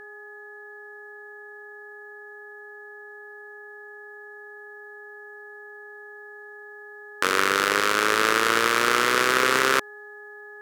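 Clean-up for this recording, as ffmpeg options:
-af "bandreject=f=415.1:t=h:w=4,bandreject=f=830.2:t=h:w=4,bandreject=f=1245.3:t=h:w=4,bandreject=f=1660.4:t=h:w=4,bandreject=f=1700:w=30"

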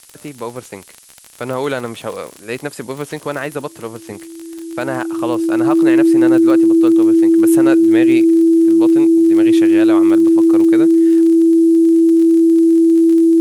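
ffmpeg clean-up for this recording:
-af "adeclick=t=4,bandreject=f=330:w=30,afftdn=nr=22:nf=-37"

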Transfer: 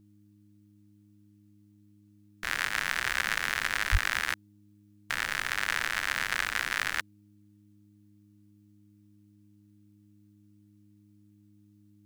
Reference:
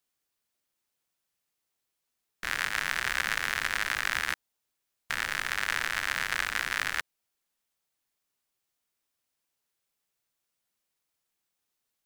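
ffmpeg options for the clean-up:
-filter_complex "[0:a]bandreject=f=102.9:t=h:w=4,bandreject=f=205.8:t=h:w=4,bandreject=f=308.7:t=h:w=4,asplit=3[s0][s1][s2];[s0]afade=t=out:st=3.91:d=0.02[s3];[s1]highpass=f=140:w=0.5412,highpass=f=140:w=1.3066,afade=t=in:st=3.91:d=0.02,afade=t=out:st=4.03:d=0.02[s4];[s2]afade=t=in:st=4.03:d=0.02[s5];[s3][s4][s5]amix=inputs=3:normalize=0"

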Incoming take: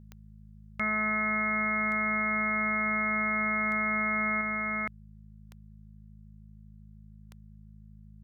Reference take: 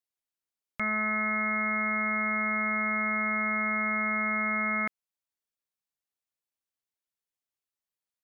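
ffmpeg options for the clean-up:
-af "adeclick=t=4,bandreject=f=52.8:t=h:w=4,bandreject=f=105.6:t=h:w=4,bandreject=f=158.4:t=h:w=4,bandreject=f=211.2:t=h:w=4,agate=range=0.0891:threshold=0.00708,asetnsamples=n=441:p=0,asendcmd='4.41 volume volume 3dB',volume=1"

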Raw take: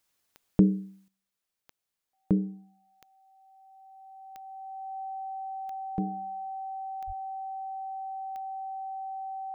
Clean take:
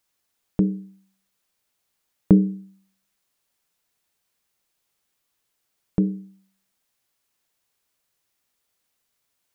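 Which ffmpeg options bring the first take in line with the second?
-filter_complex "[0:a]adeclick=t=4,bandreject=f=770:w=30,asplit=3[s0][s1][s2];[s0]afade=t=out:st=7.06:d=0.02[s3];[s1]highpass=f=140:w=0.5412,highpass=f=140:w=1.3066,afade=t=in:st=7.06:d=0.02,afade=t=out:st=7.18:d=0.02[s4];[s2]afade=t=in:st=7.18:d=0.02[s5];[s3][s4][s5]amix=inputs=3:normalize=0,asetnsamples=n=441:p=0,asendcmd='1.08 volume volume 10.5dB',volume=1"

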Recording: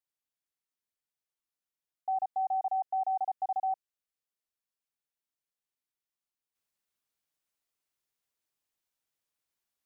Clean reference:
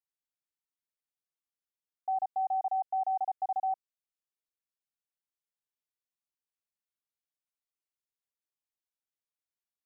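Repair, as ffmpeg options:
-af "asetnsamples=n=441:p=0,asendcmd='6.55 volume volume -7dB',volume=1"

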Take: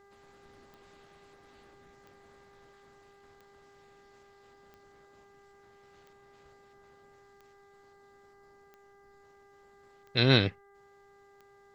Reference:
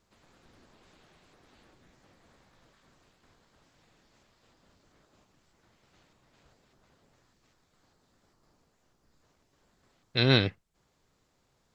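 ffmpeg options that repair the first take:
-af "adeclick=t=4,bandreject=f=399.6:t=h:w=4,bandreject=f=799.2:t=h:w=4,bandreject=f=1198.8:t=h:w=4,bandreject=f=1598.4:t=h:w=4,bandreject=f=1998:t=h:w=4"

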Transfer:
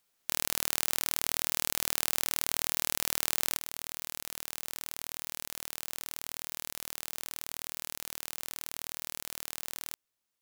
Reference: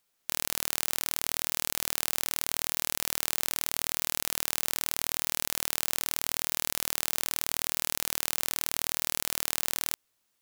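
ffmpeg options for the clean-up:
-af "asetnsamples=n=441:p=0,asendcmd='3.57 volume volume 9dB',volume=1"

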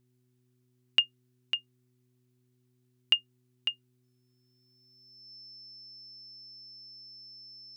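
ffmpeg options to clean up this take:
-af "bandreject=f=124.5:t=h:w=4,bandreject=f=249:t=h:w=4,bandreject=f=373.5:t=h:w=4,bandreject=f=5300:w=30"

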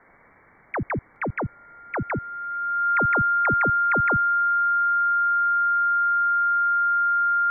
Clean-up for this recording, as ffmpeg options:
-af "bandreject=f=1400:w=30,afwtdn=0.005"

